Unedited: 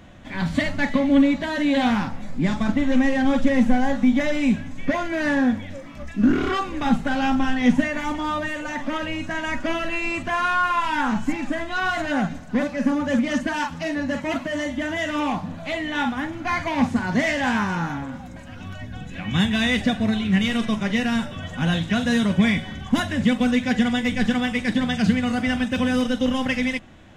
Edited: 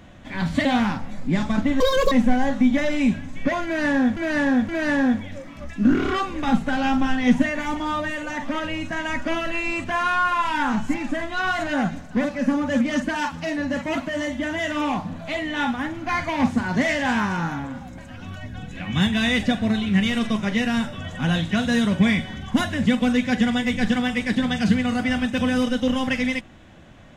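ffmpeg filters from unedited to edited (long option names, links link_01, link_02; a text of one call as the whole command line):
ffmpeg -i in.wav -filter_complex "[0:a]asplit=6[link_01][link_02][link_03][link_04][link_05][link_06];[link_01]atrim=end=0.652[link_07];[link_02]atrim=start=1.758:end=2.914[link_08];[link_03]atrim=start=2.91:end=3.54,asetpts=PTS-STARTPTS,asetrate=87759,aresample=44100,atrim=end_sample=13961,asetpts=PTS-STARTPTS[link_09];[link_04]atrim=start=3.536:end=5.592[link_10];[link_05]atrim=start=5.068:end=5.592[link_11];[link_06]atrim=start=5.068[link_12];[link_07][link_08]acrossfade=duration=0.004:curve1=hsin:curve2=hsin[link_13];[link_13][link_09]acrossfade=duration=0.004:curve1=hsin:curve2=hsin[link_14];[link_14][link_10]acrossfade=duration=0.004:curve1=hsin:curve2=hsin[link_15];[link_15][link_11]acrossfade=duration=0.004:curve1=hsin:curve2=hsin[link_16];[link_16][link_12]acrossfade=duration=0.004:curve1=hsin:curve2=hsin" out.wav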